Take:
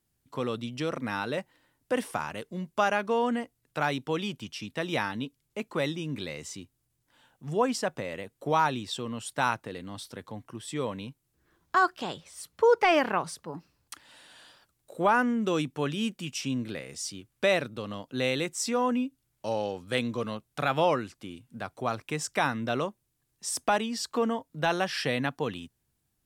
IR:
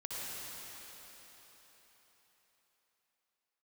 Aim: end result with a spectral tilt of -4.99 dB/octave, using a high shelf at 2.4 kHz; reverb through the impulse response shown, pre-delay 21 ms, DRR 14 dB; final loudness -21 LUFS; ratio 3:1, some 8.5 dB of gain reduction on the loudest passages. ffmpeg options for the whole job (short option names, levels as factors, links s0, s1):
-filter_complex "[0:a]highshelf=f=2400:g=-6,acompressor=threshold=0.0355:ratio=3,asplit=2[s0][s1];[1:a]atrim=start_sample=2205,adelay=21[s2];[s1][s2]afir=irnorm=-1:irlink=0,volume=0.15[s3];[s0][s3]amix=inputs=2:normalize=0,volume=5.01"